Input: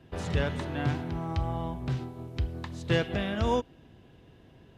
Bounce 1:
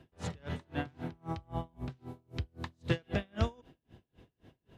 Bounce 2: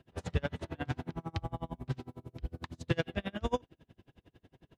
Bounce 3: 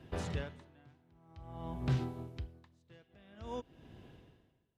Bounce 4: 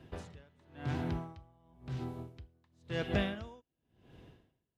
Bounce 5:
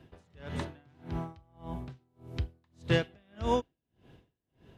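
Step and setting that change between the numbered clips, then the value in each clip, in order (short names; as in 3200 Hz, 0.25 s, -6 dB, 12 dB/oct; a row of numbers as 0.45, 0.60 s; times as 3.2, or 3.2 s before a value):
dB-linear tremolo, rate: 3.8, 11, 0.5, 0.95, 1.7 Hz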